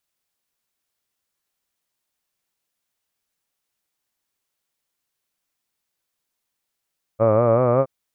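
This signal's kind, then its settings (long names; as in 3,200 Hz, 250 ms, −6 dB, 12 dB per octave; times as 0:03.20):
vowel from formants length 0.67 s, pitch 107 Hz, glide +3.5 semitones, F1 560 Hz, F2 1,200 Hz, F3 2,300 Hz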